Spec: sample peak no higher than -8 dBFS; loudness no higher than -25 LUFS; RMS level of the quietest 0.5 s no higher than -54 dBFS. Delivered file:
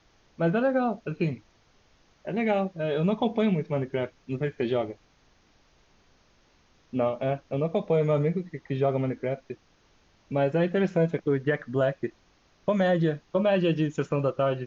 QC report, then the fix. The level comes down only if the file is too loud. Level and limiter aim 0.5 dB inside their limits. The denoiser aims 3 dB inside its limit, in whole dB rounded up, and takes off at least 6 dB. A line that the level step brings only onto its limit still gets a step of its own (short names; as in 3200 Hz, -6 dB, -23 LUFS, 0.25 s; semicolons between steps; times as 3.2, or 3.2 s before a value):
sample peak -11.5 dBFS: OK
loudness -27.5 LUFS: OK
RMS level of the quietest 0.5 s -63 dBFS: OK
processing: none